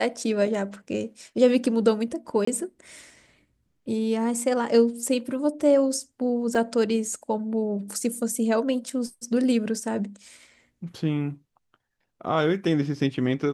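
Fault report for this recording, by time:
2.45–2.47 s: dropout 24 ms
6.55 s: dropout 3.3 ms

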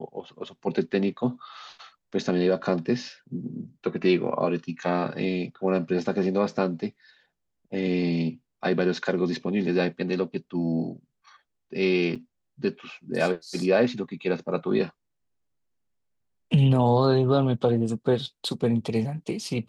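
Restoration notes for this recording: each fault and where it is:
12.15–12.16 s: dropout 6.1 ms

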